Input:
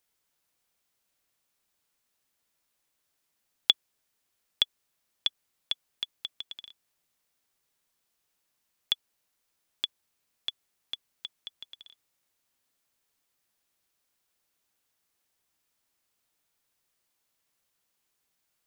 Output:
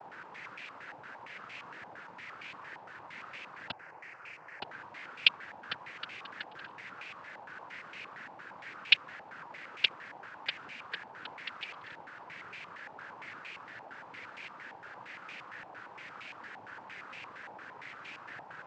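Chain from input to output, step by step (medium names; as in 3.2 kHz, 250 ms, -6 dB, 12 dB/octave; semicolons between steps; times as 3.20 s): in parallel at -8 dB: word length cut 6-bit, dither triangular; 3.71–4.62 s: on the sum: static phaser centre 1 kHz, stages 6; noise-vocoded speech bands 8; step-sequenced low-pass 8.7 Hz 850–2400 Hz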